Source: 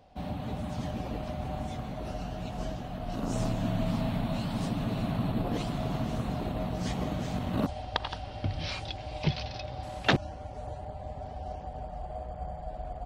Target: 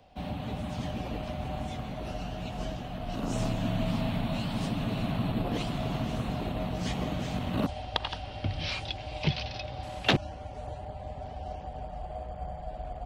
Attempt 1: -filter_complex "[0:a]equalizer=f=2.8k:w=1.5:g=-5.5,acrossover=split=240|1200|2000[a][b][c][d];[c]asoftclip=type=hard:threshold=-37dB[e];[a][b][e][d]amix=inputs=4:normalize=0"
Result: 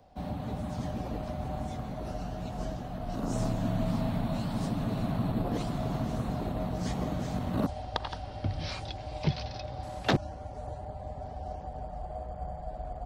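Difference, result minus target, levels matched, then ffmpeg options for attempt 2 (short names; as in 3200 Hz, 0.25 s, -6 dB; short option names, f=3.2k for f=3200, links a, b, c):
2000 Hz band -4.0 dB
-filter_complex "[0:a]equalizer=f=2.8k:w=1.5:g=5,acrossover=split=240|1200|2000[a][b][c][d];[c]asoftclip=type=hard:threshold=-37dB[e];[a][b][e][d]amix=inputs=4:normalize=0"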